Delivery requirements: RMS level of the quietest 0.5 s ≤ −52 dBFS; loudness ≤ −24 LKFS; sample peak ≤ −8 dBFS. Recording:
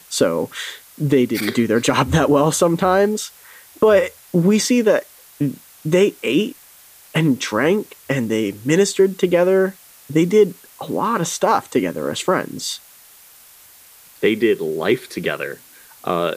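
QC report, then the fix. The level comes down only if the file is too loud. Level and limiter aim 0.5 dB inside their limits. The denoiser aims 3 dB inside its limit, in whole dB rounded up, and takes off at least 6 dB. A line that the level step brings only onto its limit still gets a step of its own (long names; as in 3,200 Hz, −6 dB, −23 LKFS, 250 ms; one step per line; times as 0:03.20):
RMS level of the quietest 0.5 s −46 dBFS: out of spec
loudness −18.5 LKFS: out of spec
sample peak −4.0 dBFS: out of spec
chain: broadband denoise 6 dB, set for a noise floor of −46 dBFS
level −6 dB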